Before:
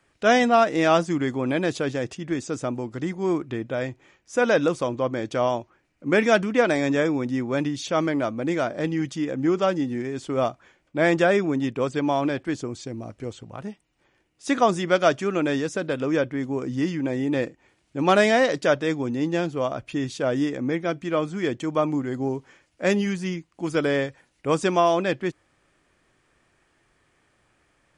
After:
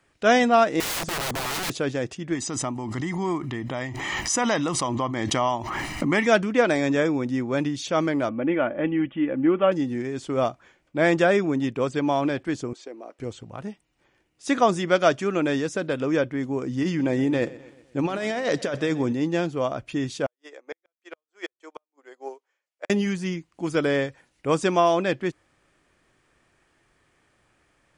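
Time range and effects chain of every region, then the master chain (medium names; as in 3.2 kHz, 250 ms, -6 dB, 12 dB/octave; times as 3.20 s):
0.80–1.70 s: bass shelf 170 Hz +10 dB + integer overflow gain 23.5 dB
2.35–6.27 s: bass shelf 250 Hz -7 dB + comb 1 ms + swell ahead of each attack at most 23 dB/s
8.29–9.72 s: steep low-pass 3.2 kHz 96 dB/octave + comb 3.5 ms, depth 43%
12.73–13.19 s: high-pass 360 Hz 24 dB/octave + treble shelf 4.2 kHz -12 dB
16.83–19.13 s: compressor with a negative ratio -24 dBFS + feedback delay 125 ms, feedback 51%, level -19 dB
20.26–22.90 s: inverse Chebyshev high-pass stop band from 170 Hz, stop band 50 dB + inverted gate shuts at -19 dBFS, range -40 dB + upward expansion 2.5:1, over -44 dBFS
whole clip: none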